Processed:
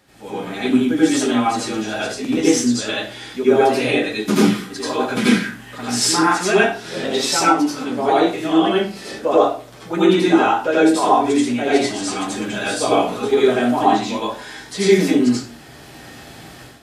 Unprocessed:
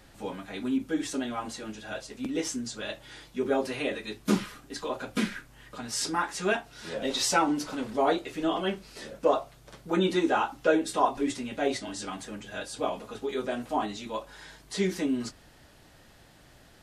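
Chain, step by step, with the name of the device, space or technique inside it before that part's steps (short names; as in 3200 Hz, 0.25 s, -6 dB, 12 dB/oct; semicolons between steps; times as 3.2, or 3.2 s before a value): far laptop microphone (reverb RT60 0.40 s, pre-delay 76 ms, DRR -7 dB; HPF 110 Hz 12 dB/oct; AGC); gain -1 dB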